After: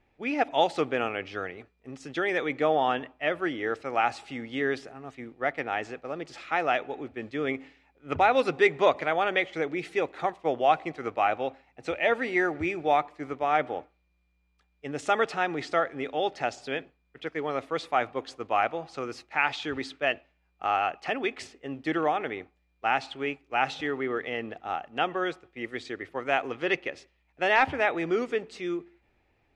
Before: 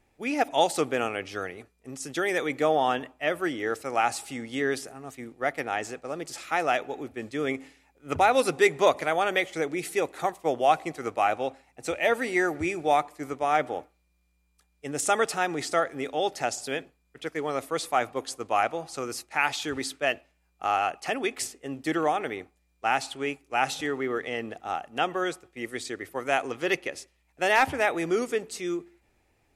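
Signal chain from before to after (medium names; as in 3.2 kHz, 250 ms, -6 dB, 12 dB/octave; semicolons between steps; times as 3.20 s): Chebyshev low-pass 3.1 kHz, order 2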